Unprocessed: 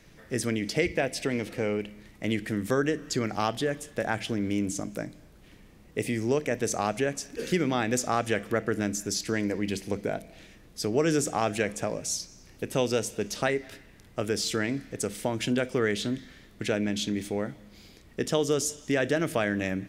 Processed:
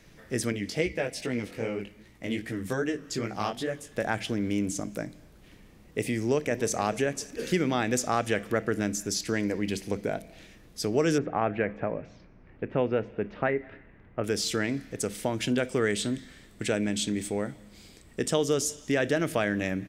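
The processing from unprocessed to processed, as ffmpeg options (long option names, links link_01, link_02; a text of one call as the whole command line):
ffmpeg -i in.wav -filter_complex "[0:a]asettb=1/sr,asplit=3[link_01][link_02][link_03];[link_01]atrim=end=0.524[link_04];[link_02]atrim=start=0.52:end=3.92,asetpts=PTS-STARTPTS,afade=type=in:duration=0.004:curve=qsin,afade=type=out:start_time=3.396:duration=0.004:curve=qsin,flanger=delay=15.5:depth=6.5:speed=2.5[link_05];[link_03]atrim=start=3.916[link_06];[link_04][link_05]acrossfade=duration=0.004:curve1=hsin:curve2=qsin[link_07];[link_07][link_06]acrossfade=duration=0.004:curve1=qsin:curve2=hsin,asplit=2[link_08][link_09];[link_09]afade=type=in:start_time=6.17:duration=0.01,afade=type=out:start_time=6.74:duration=0.01,aecho=0:1:290|580|870|1160:0.149624|0.0748118|0.0374059|0.0187029[link_10];[link_08][link_10]amix=inputs=2:normalize=0,asettb=1/sr,asplit=3[link_11][link_12][link_13];[link_11]atrim=end=11.184[link_14];[link_12]atrim=start=11.18:end=14.24,asetpts=PTS-STARTPTS,afade=type=in:duration=0.004:curve=qsin,afade=type=out:start_time=3.056:duration=0.004:curve=qsin,lowpass=frequency=2200:width=0.5412,lowpass=frequency=2200:width=1.3066[link_15];[link_13]atrim=start=14.236[link_16];[link_14][link_15]acrossfade=duration=0.004:curve1=hsin:curve2=qsin[link_17];[link_17][link_16]acrossfade=duration=0.004:curve1=qsin:curve2=hsin,asettb=1/sr,asplit=3[link_18][link_19][link_20];[link_18]atrim=end=15.684[link_21];[link_19]atrim=start=15.68:end=18.33,asetpts=PTS-STARTPTS,afade=type=in:duration=0.004:curve=qsin,afade=type=out:start_time=2.646:duration=0.004:curve=qsin,equalizer=frequency=8100:width_type=o:width=0.21:gain=13[link_22];[link_20]atrim=start=18.326[link_23];[link_21][link_22]acrossfade=duration=0.004:curve1=hsin:curve2=qsin[link_24];[link_24][link_23]acrossfade=duration=0.004:curve1=qsin:curve2=hsin" out.wav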